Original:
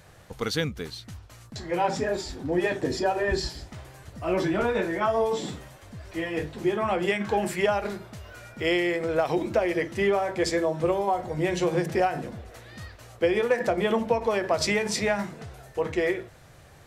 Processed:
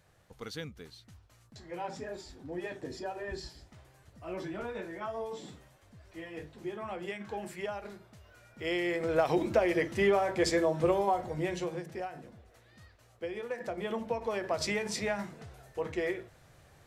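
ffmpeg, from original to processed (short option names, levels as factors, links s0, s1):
-af "volume=1.78,afade=t=in:st=8.49:d=0.72:silence=0.281838,afade=t=out:st=11.01:d=0.82:silence=0.237137,afade=t=in:st=13.41:d=1.12:silence=0.421697"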